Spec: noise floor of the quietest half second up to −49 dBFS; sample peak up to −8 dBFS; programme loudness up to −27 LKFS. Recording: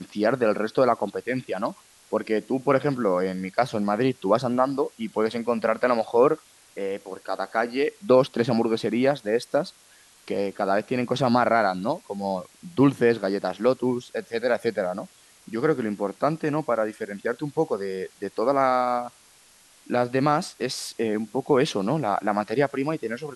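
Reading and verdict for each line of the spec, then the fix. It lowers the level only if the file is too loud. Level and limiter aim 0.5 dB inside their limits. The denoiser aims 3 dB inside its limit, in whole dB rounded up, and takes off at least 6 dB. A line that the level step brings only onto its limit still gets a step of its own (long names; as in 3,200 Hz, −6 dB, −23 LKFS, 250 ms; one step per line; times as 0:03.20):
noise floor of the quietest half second −55 dBFS: in spec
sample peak −5.5 dBFS: out of spec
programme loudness −25.0 LKFS: out of spec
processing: level −2.5 dB
brickwall limiter −8.5 dBFS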